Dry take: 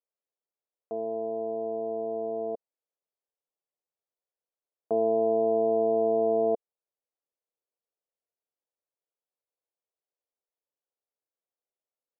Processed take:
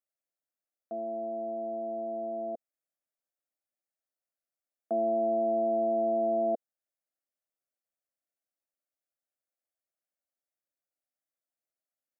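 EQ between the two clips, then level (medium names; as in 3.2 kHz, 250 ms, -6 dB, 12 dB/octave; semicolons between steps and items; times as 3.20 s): high-pass 110 Hz; static phaser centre 650 Hz, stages 8; 0.0 dB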